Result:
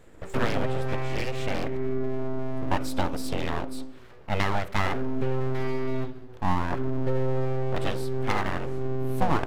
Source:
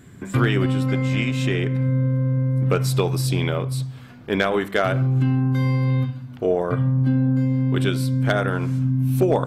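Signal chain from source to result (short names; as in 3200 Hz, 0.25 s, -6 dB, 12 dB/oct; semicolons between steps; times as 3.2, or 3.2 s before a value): HPF 150 Hz 12 dB/oct; high shelf 2100 Hz -8.5 dB; full-wave rectifier; gain -1.5 dB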